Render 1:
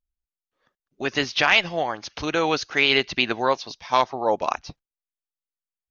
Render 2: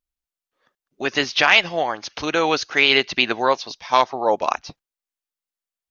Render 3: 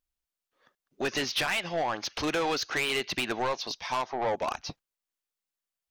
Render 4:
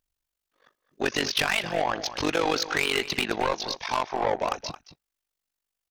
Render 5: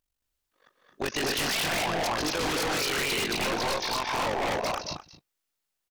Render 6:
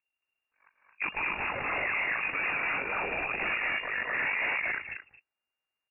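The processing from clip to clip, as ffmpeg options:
ffmpeg -i in.wav -af "lowshelf=frequency=150:gain=-9.5,volume=3.5dB" out.wav
ffmpeg -i in.wav -af "acompressor=threshold=-19dB:ratio=6,asoftclip=type=tanh:threshold=-23.5dB" out.wav
ffmpeg -i in.wav -filter_complex "[0:a]tremolo=f=48:d=0.889,asplit=2[link_01][link_02];[link_02]adelay=221.6,volume=-13dB,highshelf=frequency=4000:gain=-4.99[link_03];[link_01][link_03]amix=inputs=2:normalize=0,volume=7dB" out.wav
ffmpeg -i in.wav -af "aecho=1:1:151.6|221.6|256.6:0.398|0.794|0.631,aeval=exprs='0.0794*(abs(mod(val(0)/0.0794+3,4)-2)-1)':channel_layout=same,volume=-1dB" out.wav
ffmpeg -i in.wav -af "lowpass=frequency=2400:width_type=q:width=0.5098,lowpass=frequency=2400:width_type=q:width=0.6013,lowpass=frequency=2400:width_type=q:width=0.9,lowpass=frequency=2400:width_type=q:width=2.563,afreqshift=-2800,volume=-1.5dB" out.wav

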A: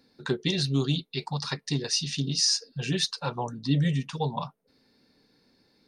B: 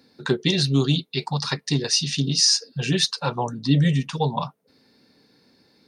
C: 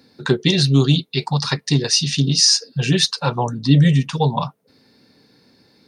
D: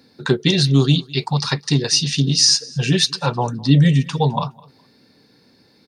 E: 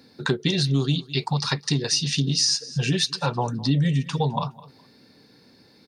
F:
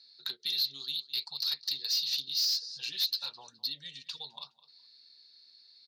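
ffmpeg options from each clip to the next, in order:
ffmpeg -i in.wav -af "highpass=72,volume=6dB" out.wav
ffmpeg -i in.wav -af "equalizer=frequency=110:width=1.6:gain=4,volume=4dB" out.wav
ffmpeg -i in.wav -af "aecho=1:1:208|416:0.0631|0.0139" out.wav
ffmpeg -i in.wav -af "acompressor=threshold=-22dB:ratio=2.5" out.wav
ffmpeg -i in.wav -af "bandpass=frequency=4200:width_type=q:width=7.4:csg=0,asoftclip=type=tanh:threshold=-29.5dB,volume=5.5dB" out.wav

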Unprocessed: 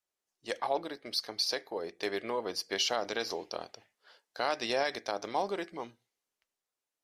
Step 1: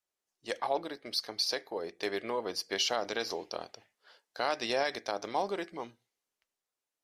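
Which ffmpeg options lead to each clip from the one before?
ffmpeg -i in.wav -af anull out.wav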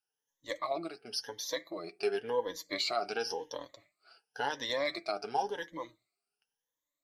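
ffmpeg -i in.wav -af "afftfilt=real='re*pow(10,19/40*sin(2*PI*(1.1*log(max(b,1)*sr/1024/100)/log(2)-(0.94)*(pts-256)/sr)))':imag='im*pow(10,19/40*sin(2*PI*(1.1*log(max(b,1)*sr/1024/100)/log(2)-(0.94)*(pts-256)/sr)))':win_size=1024:overlap=0.75,flanger=delay=5.9:depth=1.5:regen=38:speed=1.2:shape=triangular,volume=-1.5dB" out.wav

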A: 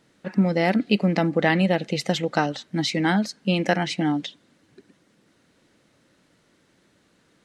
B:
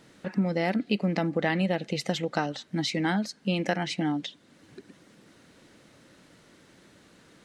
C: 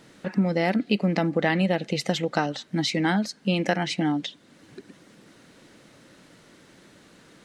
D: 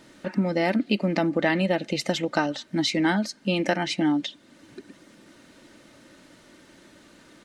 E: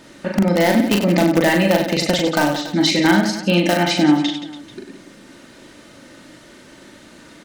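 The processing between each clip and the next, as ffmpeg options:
ffmpeg -i in.wav -af "acompressor=threshold=-51dB:ratio=1.5,volume=6dB" out.wav
ffmpeg -i in.wav -af "equalizer=frequency=81:width_type=o:width=0.43:gain=-6,volume=3.5dB" out.wav
ffmpeg -i in.wav -af "aecho=1:1:3.3:0.38" out.wav
ffmpeg -i in.wav -filter_complex "[0:a]asplit=2[link_01][link_02];[link_02]aeval=exprs='(mod(5.01*val(0)+1,2)-1)/5.01':channel_layout=same,volume=-4dB[link_03];[link_01][link_03]amix=inputs=2:normalize=0,aecho=1:1:40|96|174.4|284.2|437.8:0.631|0.398|0.251|0.158|0.1,volume=2.5dB" out.wav

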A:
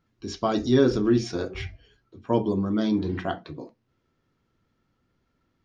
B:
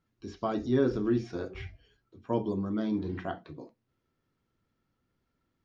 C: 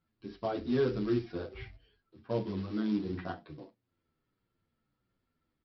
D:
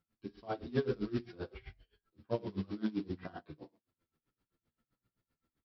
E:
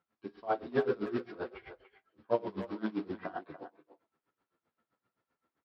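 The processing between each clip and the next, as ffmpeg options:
ffmpeg -i in.wav -filter_complex "[0:a]acrossover=split=2700[link_01][link_02];[link_02]acompressor=threshold=-49dB:ratio=4:attack=1:release=60[link_03];[link_01][link_03]amix=inputs=2:normalize=0,volume=-6.5dB" out.wav
ffmpeg -i in.wav -filter_complex "[0:a]aresample=11025,acrusher=bits=5:mode=log:mix=0:aa=0.000001,aresample=44100,asplit=2[link_01][link_02];[link_02]adelay=9.2,afreqshift=-1.5[link_03];[link_01][link_03]amix=inputs=2:normalize=1" out.wav
ffmpeg -i in.wav -filter_complex "[0:a]asplit=2[link_01][link_02];[link_02]aecho=0:1:46|63:0.299|0.316[link_03];[link_01][link_03]amix=inputs=2:normalize=0,aeval=exprs='val(0)*pow(10,-23*(0.5-0.5*cos(2*PI*7.7*n/s))/20)':channel_layout=same,volume=1dB" out.wav
ffmpeg -i in.wav -filter_complex "[0:a]bandpass=frequency=910:width_type=q:width=0.81:csg=0,asplit=2[link_01][link_02];[link_02]adelay=290,highpass=300,lowpass=3400,asoftclip=type=hard:threshold=-34dB,volume=-12dB[link_03];[link_01][link_03]amix=inputs=2:normalize=0,volume=9dB" out.wav

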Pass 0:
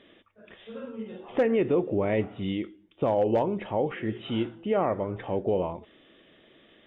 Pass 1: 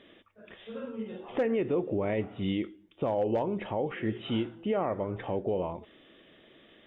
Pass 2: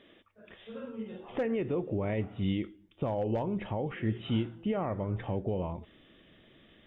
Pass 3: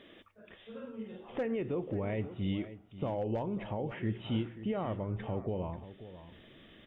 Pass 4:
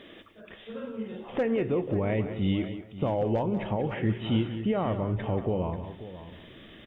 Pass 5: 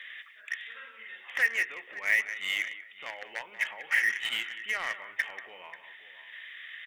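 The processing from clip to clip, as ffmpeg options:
ffmpeg -i in.wav -af "alimiter=limit=-20.5dB:level=0:latency=1:release=241" out.wav
ffmpeg -i in.wav -af "asubboost=boost=3:cutoff=210,volume=-2.5dB" out.wav
ffmpeg -i in.wav -af "aecho=1:1:537:0.2,areverse,acompressor=mode=upward:threshold=-45dB:ratio=2.5,areverse,volume=-3dB" out.wav
ffmpeg -i in.wav -af "aecho=1:1:186:0.266,volume=7dB" out.wav
ffmpeg -i in.wav -filter_complex "[0:a]highpass=frequency=1900:width_type=q:width=6.5,asplit=2[link_01][link_02];[link_02]acrusher=bits=4:mix=0:aa=0.5,volume=-6dB[link_03];[link_01][link_03]amix=inputs=2:normalize=0" out.wav

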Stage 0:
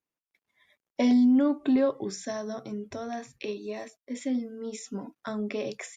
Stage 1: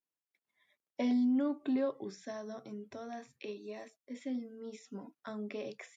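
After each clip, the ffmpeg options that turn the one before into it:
ffmpeg -i in.wav -filter_complex "[0:a]highpass=130,acrossover=split=5200[link_01][link_02];[link_02]acompressor=threshold=-58dB:ratio=4:attack=1:release=60[link_03];[link_01][link_03]amix=inputs=2:normalize=0,volume=-8.5dB" out.wav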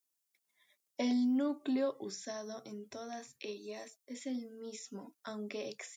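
ffmpeg -i in.wav -af "bass=frequency=250:gain=-3,treble=frequency=4000:gain=12" out.wav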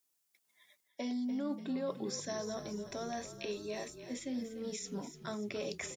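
ffmpeg -i in.wav -filter_complex "[0:a]areverse,acompressor=threshold=-40dB:ratio=6,areverse,asplit=8[link_01][link_02][link_03][link_04][link_05][link_06][link_07][link_08];[link_02]adelay=292,afreqshift=-36,volume=-11.5dB[link_09];[link_03]adelay=584,afreqshift=-72,volume=-16.1dB[link_10];[link_04]adelay=876,afreqshift=-108,volume=-20.7dB[link_11];[link_05]adelay=1168,afreqshift=-144,volume=-25.2dB[link_12];[link_06]adelay=1460,afreqshift=-180,volume=-29.8dB[link_13];[link_07]adelay=1752,afreqshift=-216,volume=-34.4dB[link_14];[link_08]adelay=2044,afreqshift=-252,volume=-39dB[link_15];[link_01][link_09][link_10][link_11][link_12][link_13][link_14][link_15]amix=inputs=8:normalize=0,volume=5dB" out.wav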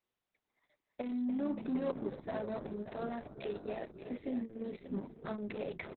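ffmpeg -i in.wav -af "adynamicsmooth=sensitivity=8:basefreq=1100,aecho=1:1:579:0.266,volume=2dB" -ar 48000 -c:a libopus -b:a 6k out.opus

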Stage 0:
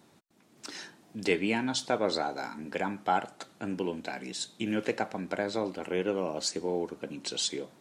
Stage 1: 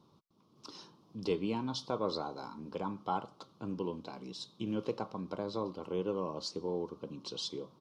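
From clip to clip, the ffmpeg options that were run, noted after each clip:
ffmpeg -i in.wav -af "firequalizer=gain_entry='entry(150,0);entry(240,-6);entry(490,-4);entry(700,-12);entry(1100,3);entry(1700,-26);entry(3100,-8);entry(5300,-6);entry(7600,-22);entry(11000,-17)':delay=0.05:min_phase=1" out.wav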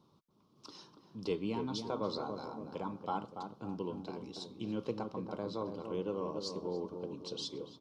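ffmpeg -i in.wav -filter_complex "[0:a]asplit=2[link_01][link_02];[link_02]adelay=285,lowpass=frequency=990:poles=1,volume=-5.5dB,asplit=2[link_03][link_04];[link_04]adelay=285,lowpass=frequency=990:poles=1,volume=0.52,asplit=2[link_05][link_06];[link_06]adelay=285,lowpass=frequency=990:poles=1,volume=0.52,asplit=2[link_07][link_08];[link_08]adelay=285,lowpass=frequency=990:poles=1,volume=0.52,asplit=2[link_09][link_10];[link_10]adelay=285,lowpass=frequency=990:poles=1,volume=0.52,asplit=2[link_11][link_12];[link_12]adelay=285,lowpass=frequency=990:poles=1,volume=0.52,asplit=2[link_13][link_14];[link_14]adelay=285,lowpass=frequency=990:poles=1,volume=0.52[link_15];[link_01][link_03][link_05][link_07][link_09][link_11][link_13][link_15]amix=inputs=8:normalize=0,volume=-2.5dB" out.wav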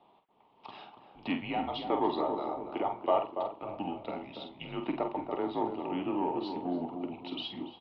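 ffmpeg -i in.wav -filter_complex "[0:a]asplit=2[link_01][link_02];[link_02]asoftclip=type=tanh:threshold=-30.5dB,volume=-8dB[link_03];[link_01][link_03]amix=inputs=2:normalize=0,asplit=2[link_04][link_05];[link_05]adelay=47,volume=-7.5dB[link_06];[link_04][link_06]amix=inputs=2:normalize=0,highpass=frequency=540:width_type=q:width=0.5412,highpass=frequency=540:width_type=q:width=1.307,lowpass=frequency=3200:width_type=q:width=0.5176,lowpass=frequency=3200:width_type=q:width=0.7071,lowpass=frequency=3200:width_type=q:width=1.932,afreqshift=-180,volume=8.5dB" out.wav

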